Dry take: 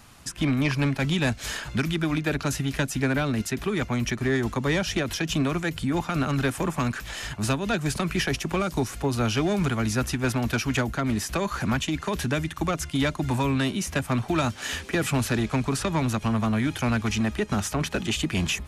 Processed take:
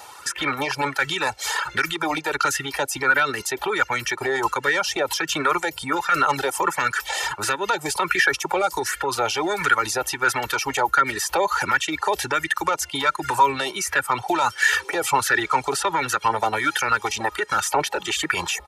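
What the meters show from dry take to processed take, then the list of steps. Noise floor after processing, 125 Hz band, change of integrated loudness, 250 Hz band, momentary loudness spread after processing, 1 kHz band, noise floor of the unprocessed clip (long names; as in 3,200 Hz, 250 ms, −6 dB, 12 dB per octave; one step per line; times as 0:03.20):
−44 dBFS, −13.0 dB, +4.0 dB, −7.5 dB, 5 LU, +11.0 dB, −41 dBFS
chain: high-pass filter 150 Hz 6 dB per octave
bass and treble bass −10 dB, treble +2 dB
reverb reduction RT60 0.74 s
comb filter 2.2 ms, depth 71%
brickwall limiter −23 dBFS, peak gain reduction 10.5 dB
low-shelf EQ 340 Hz −3.5 dB
auto-filter bell 1.4 Hz 710–1,700 Hz +14 dB
level +6.5 dB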